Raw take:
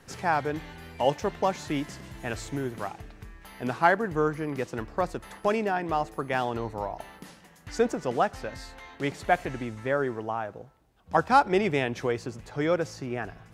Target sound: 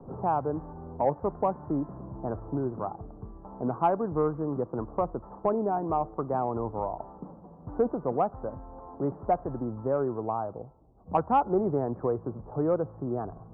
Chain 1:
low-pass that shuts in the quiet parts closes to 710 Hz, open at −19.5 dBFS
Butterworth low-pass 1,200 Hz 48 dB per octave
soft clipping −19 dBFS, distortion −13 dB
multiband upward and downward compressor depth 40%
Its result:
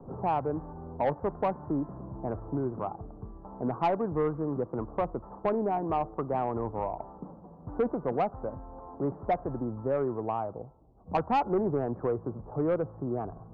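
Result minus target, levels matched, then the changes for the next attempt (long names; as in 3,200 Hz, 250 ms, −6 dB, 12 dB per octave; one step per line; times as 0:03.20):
soft clipping: distortion +13 dB
change: soft clipping −9.5 dBFS, distortion −27 dB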